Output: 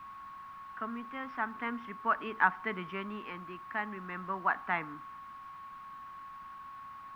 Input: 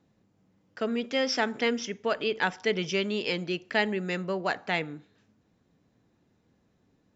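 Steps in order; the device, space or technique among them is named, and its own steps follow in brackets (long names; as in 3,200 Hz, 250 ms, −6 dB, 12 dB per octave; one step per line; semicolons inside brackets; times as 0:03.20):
shortwave radio (band-pass filter 270–2,900 Hz; amplitude tremolo 0.41 Hz, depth 55%; steady tone 1,100 Hz −54 dBFS; white noise bed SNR 13 dB)
drawn EQ curve 240 Hz 0 dB, 510 Hz −16 dB, 1,100 Hz +9 dB, 7,000 Hz −29 dB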